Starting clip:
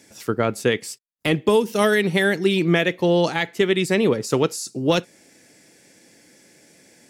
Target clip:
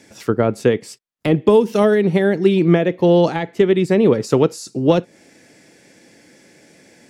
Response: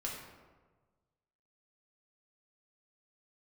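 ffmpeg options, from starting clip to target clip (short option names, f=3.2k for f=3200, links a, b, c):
-filter_complex "[0:a]lowpass=f=3.8k:p=1,acrossover=split=920[a][b];[b]acompressor=threshold=-34dB:ratio=6[c];[a][c]amix=inputs=2:normalize=0,volume=5.5dB"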